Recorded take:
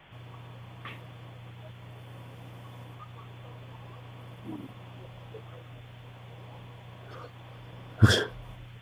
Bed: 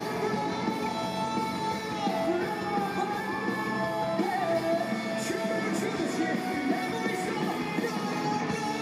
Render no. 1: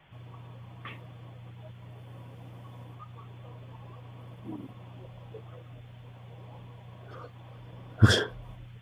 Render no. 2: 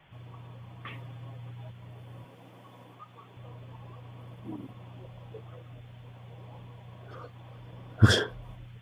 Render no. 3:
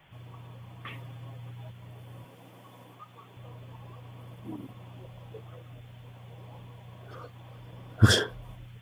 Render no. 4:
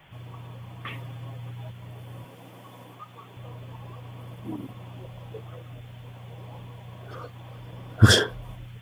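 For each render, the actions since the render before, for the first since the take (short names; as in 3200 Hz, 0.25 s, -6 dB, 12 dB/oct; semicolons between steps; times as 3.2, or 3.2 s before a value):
denoiser 6 dB, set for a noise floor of -48 dBFS
0.92–1.7 comb 7.4 ms; 2.24–3.37 HPF 200 Hz
high shelf 6400 Hz +9 dB
gain +5 dB; limiter -1 dBFS, peak gain reduction 1.5 dB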